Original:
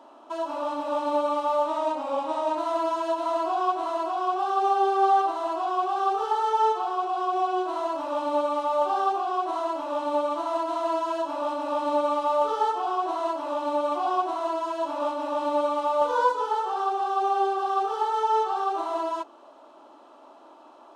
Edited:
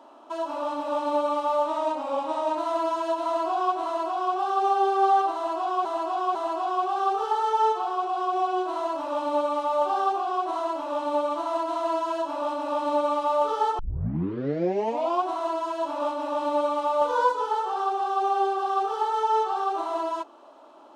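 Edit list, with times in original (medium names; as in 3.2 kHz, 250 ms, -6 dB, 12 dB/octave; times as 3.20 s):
5.35–5.85 s: loop, 3 plays
12.79 s: tape start 1.43 s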